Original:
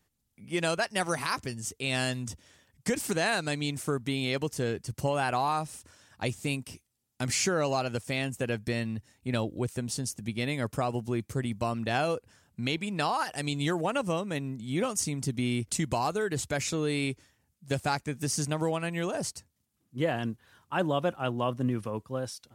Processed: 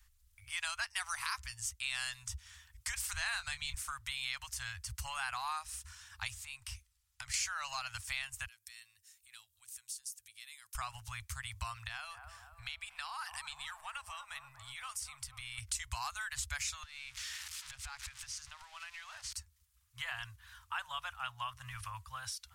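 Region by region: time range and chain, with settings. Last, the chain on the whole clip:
0:03.13–0:03.74: bass and treble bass +14 dB, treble −2 dB + double-tracking delay 23 ms −10.5 dB
0:06.43–0:07.34: high-shelf EQ 8,200 Hz −7.5 dB + downward compressor, threshold −38 dBFS
0:08.46–0:10.75: downward compressor 2 to 1, threshold −48 dBFS + first-order pre-emphasis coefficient 0.97
0:11.87–0:15.58: downward compressor 2 to 1, threshold −42 dBFS + parametric band 6,500 Hz −7 dB 0.23 octaves + delay with a band-pass on its return 239 ms, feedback 55%, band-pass 620 Hz, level −8 dB
0:16.83–0:19.33: spike at every zero crossing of −26 dBFS + low-pass filter 4,200 Hz + downward compressor 12 to 1, threshold −40 dBFS
whole clip: inverse Chebyshev band-stop filter 160–450 Hz, stop band 60 dB; bass and treble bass +12 dB, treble +1 dB; downward compressor 2 to 1, threshold −47 dBFS; level +4.5 dB

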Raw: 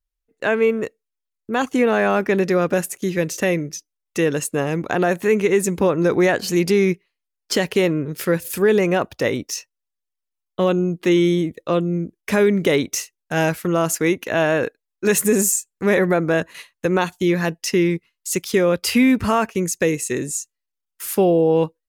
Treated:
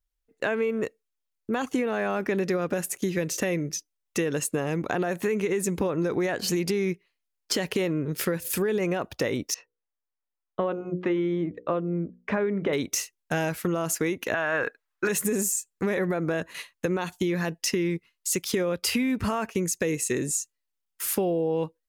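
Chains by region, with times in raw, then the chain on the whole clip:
0:09.54–0:12.73: low-pass filter 1,300 Hz + tilt shelving filter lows −4.5 dB, about 670 Hz + mains-hum notches 60/120/180/240/300/360/420/480/540 Hz
0:14.34–0:15.09: parametric band 1,400 Hz +14.5 dB 1.8 octaves + notch filter 230 Hz, Q 6
whole clip: brickwall limiter −10.5 dBFS; downward compressor, threshold −23 dBFS

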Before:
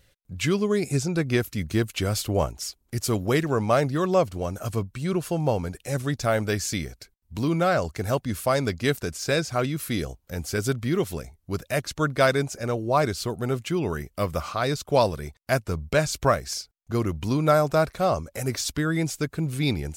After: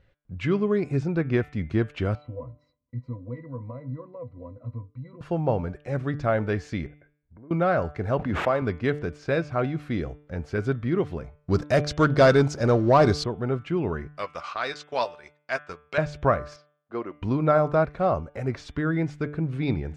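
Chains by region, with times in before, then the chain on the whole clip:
0:02.15–0:05.21: downward compressor 4 to 1, threshold −23 dBFS + resonances in every octave B, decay 0.11 s
0:06.86–0:07.51: Chebyshev low-pass with heavy ripple 2,200 Hz, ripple 9 dB + downward compressor 3 to 1, threshold −49 dBFS
0:08.19–0:08.62: running median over 9 samples + high-pass filter 220 Hz 6 dB per octave + background raised ahead of every attack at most 28 dB per second
0:11.37–0:13.24: leveller curve on the samples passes 2 + high shelf with overshoot 3,500 Hz +10 dB, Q 1.5
0:14.17–0:15.98: meter weighting curve ITU-R 468 + transient designer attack −5 dB, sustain −11 dB + double-tracking delay 12 ms −12 dB
0:16.56–0:17.22: band-pass filter 390–4,500 Hz + expander for the loud parts, over −45 dBFS
whole clip: low-pass filter 1,900 Hz 12 dB per octave; hum removal 147.9 Hz, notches 24

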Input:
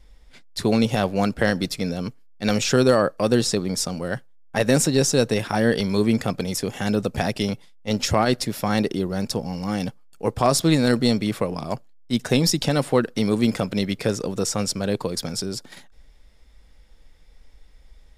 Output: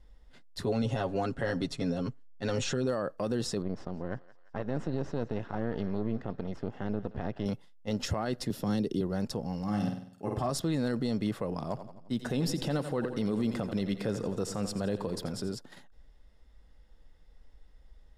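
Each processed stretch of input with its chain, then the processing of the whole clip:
0:00.65–0:02.87: low-pass filter 9,500 Hz 24 dB per octave + notch filter 5,000 Hz, Q 9.2 + comb filter 7.4 ms, depth 70%
0:03.62–0:07.46: gain on one half-wave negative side −12 dB + head-to-tape spacing loss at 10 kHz 29 dB + feedback echo with a high-pass in the loop 172 ms, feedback 65%, high-pass 980 Hz, level −16 dB
0:08.50–0:09.01: flat-topped bell 1,200 Hz −9.5 dB 2.3 octaves + multiband upward and downward compressor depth 70%
0:09.63–0:10.50: notch comb filter 480 Hz + flutter between parallel walls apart 8.4 metres, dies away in 0.59 s
0:11.54–0:15.55: dynamic equaliser 6,000 Hz, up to −5 dB, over −43 dBFS, Q 3.7 + echo with a time of its own for lows and highs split 360 Hz, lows 118 ms, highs 86 ms, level −13 dB
whole clip: high-shelf EQ 3,000 Hz −9 dB; brickwall limiter −15.5 dBFS; notch filter 2,300 Hz, Q 7.9; level −5.5 dB

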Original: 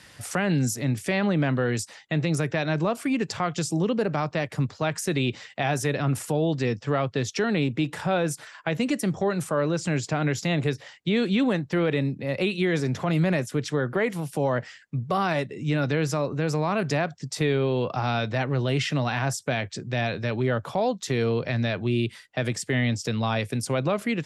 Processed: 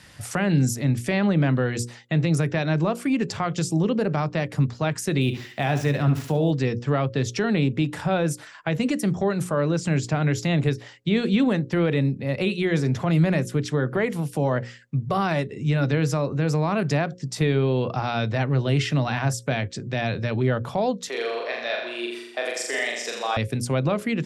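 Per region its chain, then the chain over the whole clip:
0:05.21–0:06.51: running median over 5 samples + flutter between parallel walls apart 11.9 metres, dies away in 0.4 s + one half of a high-frequency compander encoder only
0:21.08–0:23.37: high-pass filter 430 Hz 24 dB per octave + flutter between parallel walls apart 7.2 metres, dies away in 0.88 s
whole clip: low-shelf EQ 220 Hz +7 dB; mains-hum notches 60/120/180/240/300/360/420/480/540 Hz

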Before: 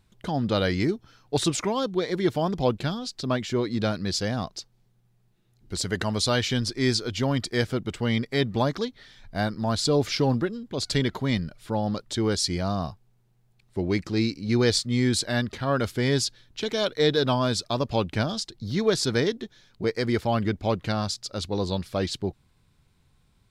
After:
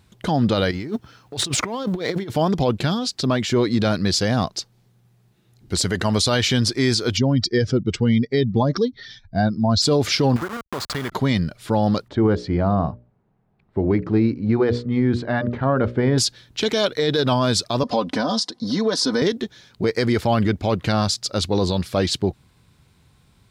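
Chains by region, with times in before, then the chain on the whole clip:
0:00.71–0:02.30: mu-law and A-law mismatch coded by A + high-shelf EQ 3,800 Hz −5 dB + compressor whose output falls as the input rises −35 dBFS
0:07.17–0:09.82: expanding power law on the bin magnitudes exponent 1.7 + low-pass with resonance 5,800 Hz, resonance Q 4.3 + notch filter 590 Hz, Q 16
0:10.36–0:11.12: hold until the input has moved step −30 dBFS + parametric band 1,200 Hz +13 dB 1.3 octaves + downward compressor 3 to 1, threshold −36 dBFS
0:12.08–0:16.18: low-pass filter 1,300 Hz + mains-hum notches 60/120/180/240/300/360/420/480/540/600 Hz
0:17.83–0:19.22: comb filter 4 ms, depth 68% + downward compressor 4 to 1, threshold −28 dBFS + loudspeaker in its box 190–9,800 Hz, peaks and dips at 260 Hz +5 dB, 610 Hz +7 dB, 1,000 Hz +8 dB, 2,500 Hz −8 dB, 5,200 Hz +4 dB, 7,600 Hz −6 dB
whole clip: high-pass filter 53 Hz; boost into a limiter +18 dB; level −9 dB

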